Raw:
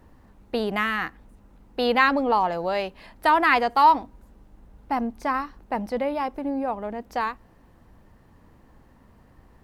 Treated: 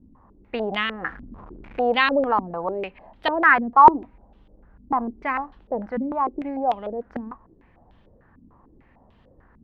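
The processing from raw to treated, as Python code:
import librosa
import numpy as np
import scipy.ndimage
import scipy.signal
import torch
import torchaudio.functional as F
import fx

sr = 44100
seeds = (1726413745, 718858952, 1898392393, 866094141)

y = fx.zero_step(x, sr, step_db=-37.0, at=(1.0, 1.81))
y = fx.filter_held_lowpass(y, sr, hz=6.7, low_hz=250.0, high_hz=3300.0)
y = y * librosa.db_to_amplitude(-3.0)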